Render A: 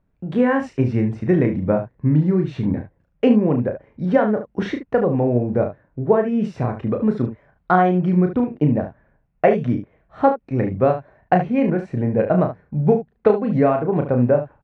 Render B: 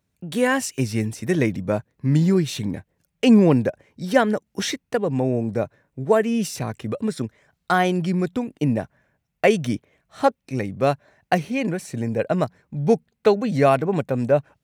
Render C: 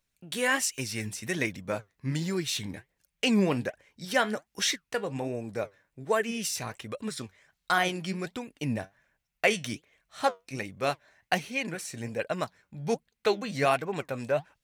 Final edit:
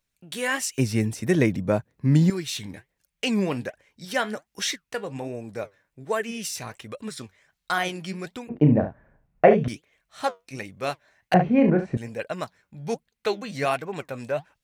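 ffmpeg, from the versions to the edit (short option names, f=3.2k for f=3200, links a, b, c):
-filter_complex "[0:a]asplit=2[a][b];[2:a]asplit=4[c][d][e][f];[c]atrim=end=0.782[g];[1:a]atrim=start=0.778:end=2.302[h];[d]atrim=start=2.298:end=8.492[i];[a]atrim=start=8.488:end=9.682[j];[e]atrim=start=9.678:end=11.342[k];[b]atrim=start=11.338:end=11.972[l];[f]atrim=start=11.968[m];[g][h]acrossfade=d=0.004:c1=hsin:c2=hsin[n];[n][i]acrossfade=d=0.004:c1=hsin:c2=hsin[o];[o][j]acrossfade=d=0.004:c1=hsin:c2=hsin[p];[p][k]acrossfade=d=0.004:c1=hsin:c2=hsin[q];[q][l]acrossfade=d=0.004:c1=hsin:c2=hsin[r];[r][m]acrossfade=d=0.004:c1=hsin:c2=hsin"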